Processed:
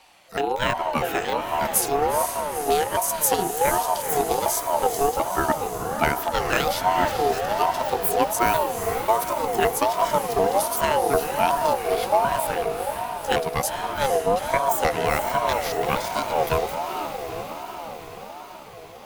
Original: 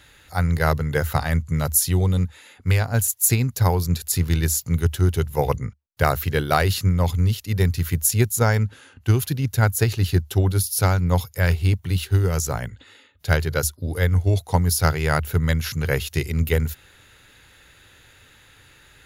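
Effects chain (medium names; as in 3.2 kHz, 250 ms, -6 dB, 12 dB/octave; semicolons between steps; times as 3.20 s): pitch shift switched off and on +7.5 st, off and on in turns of 371 ms; echo that smears into a reverb 463 ms, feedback 68%, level -6.5 dB; ring modulator with a swept carrier 700 Hz, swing 20%, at 1.3 Hz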